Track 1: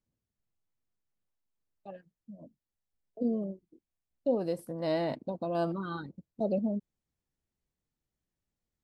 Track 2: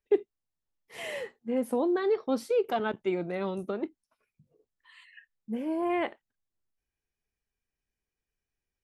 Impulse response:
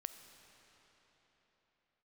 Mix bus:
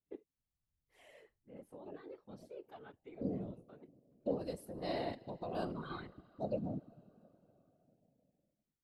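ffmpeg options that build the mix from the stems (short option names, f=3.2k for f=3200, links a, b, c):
-filter_complex "[0:a]adynamicequalizer=threshold=0.00447:dfrequency=1800:dqfactor=0.7:tfrequency=1800:tqfactor=0.7:attack=5:release=100:ratio=0.375:range=2.5:mode=boostabove:tftype=highshelf,volume=-5dB,asplit=3[a][b][c];[b]volume=-5.5dB[d];[1:a]volume=-19dB[e];[c]apad=whole_len=389724[f];[e][f]sidechaincompress=threshold=-39dB:ratio=8:attack=16:release=206[g];[2:a]atrim=start_sample=2205[h];[d][h]afir=irnorm=-1:irlink=0[i];[a][g][i]amix=inputs=3:normalize=0,afftfilt=real='hypot(re,im)*cos(2*PI*random(0))':imag='hypot(re,im)*sin(2*PI*random(1))':win_size=512:overlap=0.75"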